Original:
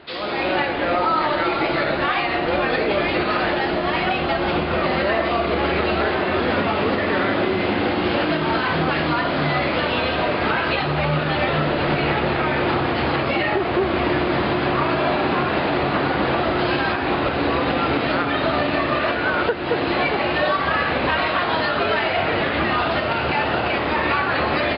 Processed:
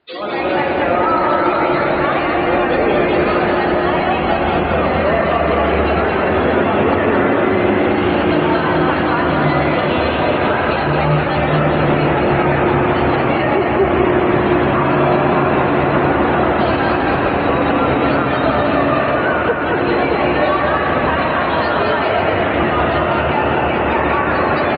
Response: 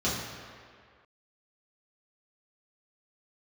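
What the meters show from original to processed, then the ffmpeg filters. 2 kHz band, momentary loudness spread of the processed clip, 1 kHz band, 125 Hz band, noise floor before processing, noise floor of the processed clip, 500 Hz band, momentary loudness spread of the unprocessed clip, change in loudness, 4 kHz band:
+3.0 dB, 2 LU, +5.5 dB, +6.5 dB, −23 dBFS, −17 dBFS, +6.5 dB, 1 LU, +5.5 dB, −1.5 dB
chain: -filter_complex "[0:a]afftdn=noise_reduction=24:noise_floor=-29,acrossover=split=1300[link_01][link_02];[link_02]alimiter=limit=-24dB:level=0:latency=1:release=131[link_03];[link_01][link_03]amix=inputs=2:normalize=0,aecho=1:1:220|396|536.8|649.4|739.6:0.631|0.398|0.251|0.158|0.1,volume=4.5dB"

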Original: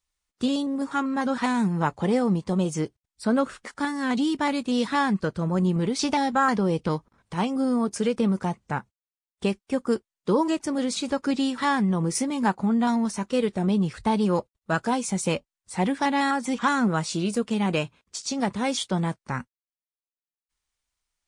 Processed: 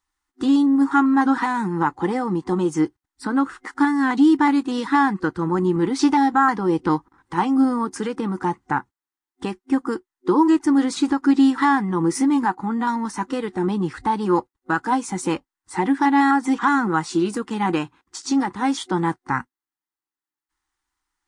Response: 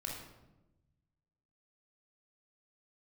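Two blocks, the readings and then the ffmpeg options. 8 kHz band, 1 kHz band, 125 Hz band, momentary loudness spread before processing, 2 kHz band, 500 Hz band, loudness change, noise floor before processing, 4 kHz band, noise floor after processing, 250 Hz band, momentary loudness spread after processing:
−1.5 dB, +6.5 dB, −1.5 dB, 7 LU, +4.5 dB, +1.0 dB, +5.0 dB, below −85 dBFS, −1.5 dB, below −85 dBFS, +5.5 dB, 10 LU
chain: -af "alimiter=limit=-16dB:level=0:latency=1:release=438,superequalizer=6b=3.98:8b=0.447:9b=3.16:10b=2.82:11b=2.51"

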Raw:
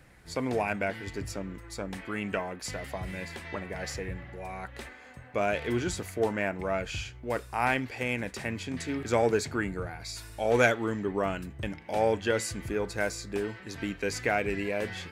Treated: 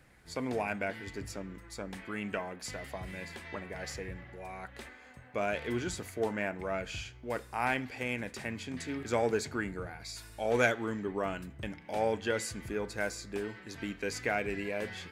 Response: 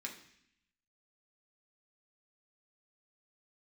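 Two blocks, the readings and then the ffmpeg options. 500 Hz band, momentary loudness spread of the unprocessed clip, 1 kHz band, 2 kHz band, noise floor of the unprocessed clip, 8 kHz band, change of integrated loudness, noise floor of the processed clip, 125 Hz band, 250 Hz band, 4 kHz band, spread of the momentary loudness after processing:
−4.5 dB, 12 LU, −4.5 dB, −3.5 dB, −49 dBFS, −4.0 dB, −4.5 dB, −54 dBFS, −5.5 dB, −4.0 dB, −3.5 dB, 12 LU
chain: -filter_complex "[0:a]asplit=2[link_01][link_02];[1:a]atrim=start_sample=2205,asetrate=38808,aresample=44100[link_03];[link_02][link_03]afir=irnorm=-1:irlink=0,volume=-13dB[link_04];[link_01][link_04]amix=inputs=2:normalize=0,volume=-5dB"

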